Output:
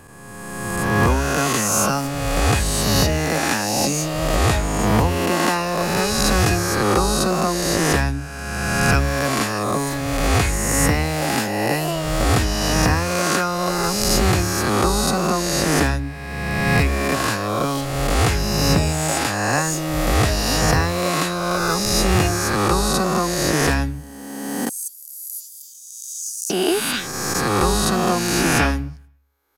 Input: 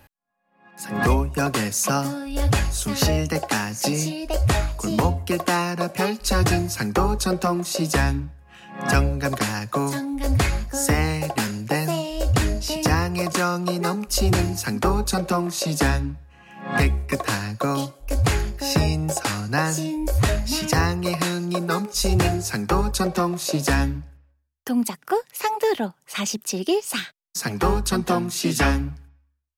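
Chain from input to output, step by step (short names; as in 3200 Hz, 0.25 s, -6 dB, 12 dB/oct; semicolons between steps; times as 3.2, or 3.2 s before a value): spectral swells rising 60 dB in 1.93 s; 24.69–26.5 inverse Chebyshev high-pass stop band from 2100 Hz, stop band 60 dB; gain -1 dB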